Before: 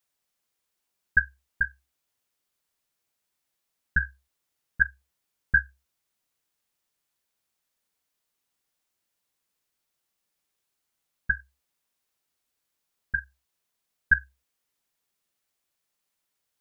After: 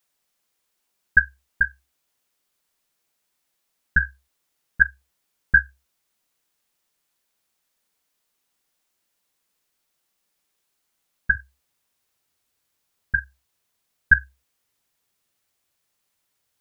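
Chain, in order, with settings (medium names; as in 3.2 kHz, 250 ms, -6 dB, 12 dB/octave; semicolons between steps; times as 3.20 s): peaking EQ 96 Hz -6.5 dB 0.65 oct, from 11.35 s +6 dB; trim +5.5 dB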